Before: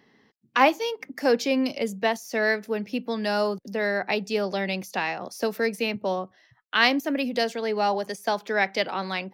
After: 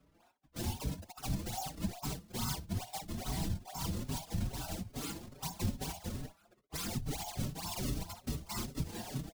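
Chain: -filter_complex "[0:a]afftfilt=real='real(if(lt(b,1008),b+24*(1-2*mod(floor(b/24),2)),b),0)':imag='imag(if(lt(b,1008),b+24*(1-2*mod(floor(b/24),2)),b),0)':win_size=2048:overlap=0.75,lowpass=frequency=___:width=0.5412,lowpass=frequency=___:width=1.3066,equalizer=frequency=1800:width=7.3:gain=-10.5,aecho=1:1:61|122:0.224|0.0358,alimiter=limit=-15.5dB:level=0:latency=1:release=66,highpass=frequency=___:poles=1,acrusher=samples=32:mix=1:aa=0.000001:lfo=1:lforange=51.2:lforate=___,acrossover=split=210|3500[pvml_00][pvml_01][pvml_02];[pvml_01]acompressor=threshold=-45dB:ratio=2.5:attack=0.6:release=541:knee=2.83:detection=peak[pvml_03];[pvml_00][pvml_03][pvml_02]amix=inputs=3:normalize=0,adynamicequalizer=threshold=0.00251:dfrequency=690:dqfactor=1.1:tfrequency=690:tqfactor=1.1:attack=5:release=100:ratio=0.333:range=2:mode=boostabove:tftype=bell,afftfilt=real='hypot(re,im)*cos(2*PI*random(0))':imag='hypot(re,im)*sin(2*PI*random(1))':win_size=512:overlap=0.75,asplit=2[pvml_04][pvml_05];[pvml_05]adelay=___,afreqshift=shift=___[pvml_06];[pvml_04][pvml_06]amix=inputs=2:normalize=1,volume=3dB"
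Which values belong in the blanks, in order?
5300, 5300, 95, 2.3, 4.9, 2.4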